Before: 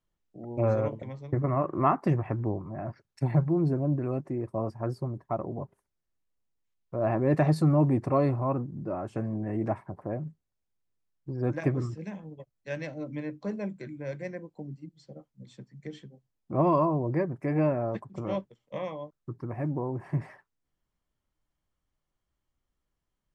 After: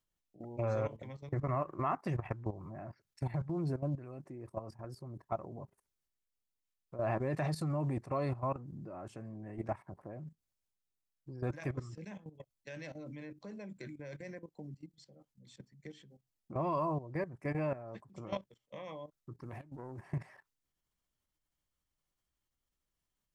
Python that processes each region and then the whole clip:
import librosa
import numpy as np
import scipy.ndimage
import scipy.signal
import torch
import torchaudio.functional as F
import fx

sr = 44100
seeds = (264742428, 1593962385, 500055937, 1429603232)

y = fx.chain(x, sr, fx.self_delay(depth_ms=0.12),
    fx.high_shelf(hz=3500.0, db=10.5),
    fx.over_compress(threshold_db=-36.0, ratio=-0.5), at=(19.43, 20.0))
y = fx.high_shelf(y, sr, hz=2400.0, db=8.5)
y = fx.level_steps(y, sr, step_db=14)
y = fx.dynamic_eq(y, sr, hz=280.0, q=0.98, threshold_db=-42.0, ratio=4.0, max_db=-5)
y = y * librosa.db_to_amplitude(-3.0)